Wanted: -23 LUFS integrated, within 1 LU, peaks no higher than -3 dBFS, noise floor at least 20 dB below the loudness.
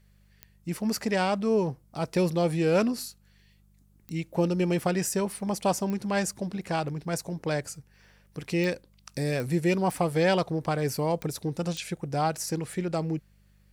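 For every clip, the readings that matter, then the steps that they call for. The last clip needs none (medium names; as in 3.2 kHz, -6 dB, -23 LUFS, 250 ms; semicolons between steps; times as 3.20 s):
clicks found 8; hum 50 Hz; highest harmonic 200 Hz; hum level -47 dBFS; loudness -28.5 LUFS; peak level -12.0 dBFS; loudness target -23.0 LUFS
-> de-click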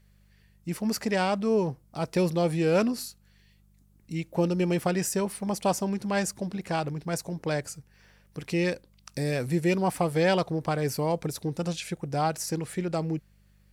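clicks found 0; hum 50 Hz; highest harmonic 200 Hz; hum level -47 dBFS
-> de-hum 50 Hz, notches 4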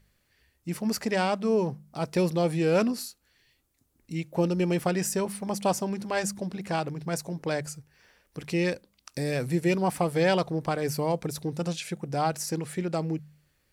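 hum not found; loudness -28.5 LUFS; peak level -12.0 dBFS; loudness target -23.0 LUFS
-> trim +5.5 dB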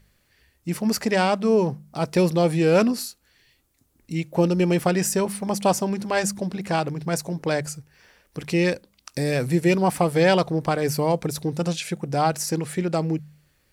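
loudness -23.0 LUFS; peak level -6.5 dBFS; noise floor -66 dBFS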